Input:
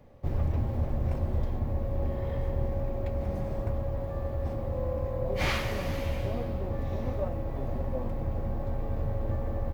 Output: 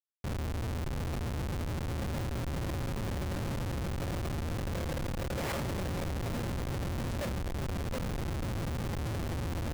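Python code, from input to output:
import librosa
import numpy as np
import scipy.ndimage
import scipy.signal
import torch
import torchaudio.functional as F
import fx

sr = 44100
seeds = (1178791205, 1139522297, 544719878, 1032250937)

y = scipy.signal.sosfilt(scipy.signal.butter(2, 95.0, 'highpass', fs=sr, output='sos'), x)
y = fx.rider(y, sr, range_db=3, speed_s=0.5)
y = fx.schmitt(y, sr, flips_db=-32.0)
y = fx.buffer_crackle(y, sr, first_s=0.87, period_s=0.13, block=256, kind='repeat')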